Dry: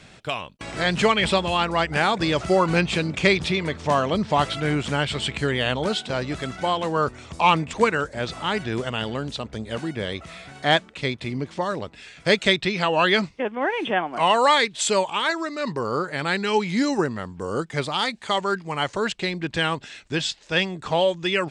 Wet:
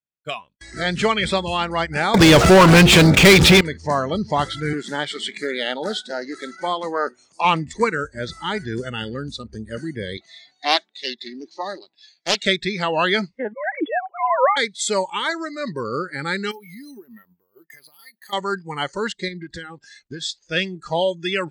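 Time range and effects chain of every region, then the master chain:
0:02.14–0:03.61: hum removal 117.8 Hz, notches 4 + leveller curve on the samples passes 5
0:04.73–0:07.45: high-pass filter 220 Hz + highs frequency-modulated by the lows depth 0.2 ms
0:10.17–0:12.46: loudspeaker in its box 310–8,100 Hz, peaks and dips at 470 Hz −8 dB, 740 Hz +3 dB, 1,300 Hz −9 dB, 3,700 Hz +8 dB + highs frequency-modulated by the lows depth 0.39 ms
0:13.53–0:14.57: three sine waves on the formant tracks + high-frequency loss of the air 99 metres
0:16.51–0:18.33: high-pass filter 220 Hz 6 dB per octave + downward compressor 10 to 1, threshold −35 dBFS + bad sample-rate conversion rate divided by 3×, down filtered, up hold
0:19.28–0:20.22: downward compressor 8 to 1, threshold −28 dBFS + highs frequency-modulated by the lows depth 0.13 ms
whole clip: noise reduction from a noise print of the clip's start 20 dB; downward expander −48 dBFS

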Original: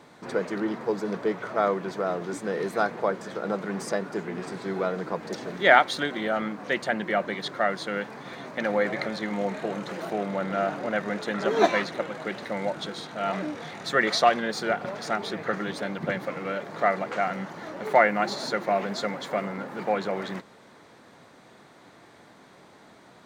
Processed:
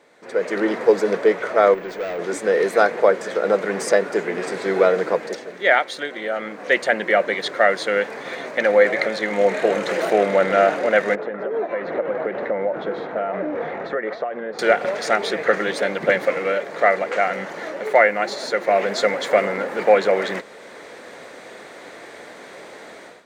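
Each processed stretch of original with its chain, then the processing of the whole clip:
0:01.74–0:02.19: tube saturation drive 33 dB, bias 0.35 + high-frequency loss of the air 54 metres + bad sample-rate conversion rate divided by 2×, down none, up hold
0:11.15–0:14.59: downward compressor 16 to 1, threshold −31 dBFS + low-pass filter 1,200 Hz
whole clip: low-shelf EQ 340 Hz −6.5 dB; automatic gain control gain up to 16.5 dB; octave-band graphic EQ 125/500/1,000/2,000/8,000 Hz −5/+10/−3/+7/+4 dB; level −6.5 dB

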